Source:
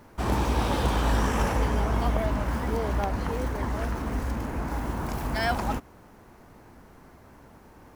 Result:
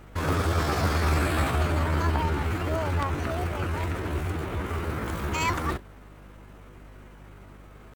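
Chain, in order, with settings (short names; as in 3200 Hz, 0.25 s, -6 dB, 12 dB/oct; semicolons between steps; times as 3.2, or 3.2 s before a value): pitch shift +6 st; hum 50 Hz, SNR 21 dB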